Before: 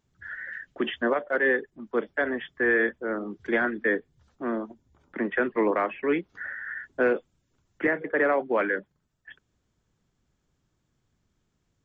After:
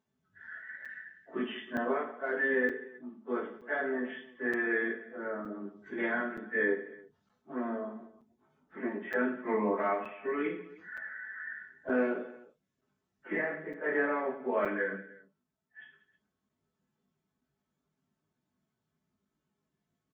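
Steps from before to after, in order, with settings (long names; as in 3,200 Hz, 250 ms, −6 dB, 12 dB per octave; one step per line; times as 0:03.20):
high-pass filter 130 Hz 12 dB per octave
time stretch by phase vocoder 1.7×
high-shelf EQ 3,100 Hz −10 dB
notch filter 460 Hz, Q 12
comb filter 4.6 ms, depth 47%
reverse bouncing-ball delay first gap 20 ms, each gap 1.6×, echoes 5
regular buffer underruns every 0.92 s, samples 256, zero, from 0:00.85
level −5 dB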